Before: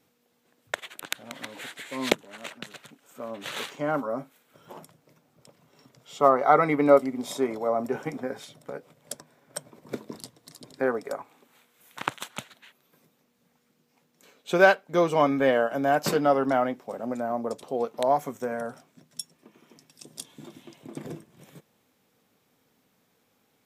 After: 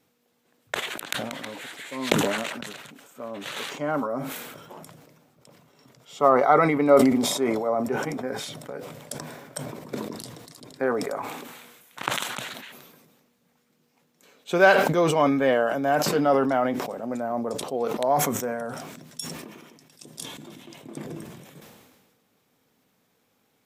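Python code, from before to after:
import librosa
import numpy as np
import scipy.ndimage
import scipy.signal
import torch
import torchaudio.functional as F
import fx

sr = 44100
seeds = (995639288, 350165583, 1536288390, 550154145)

y = fx.sustainer(x, sr, db_per_s=38.0)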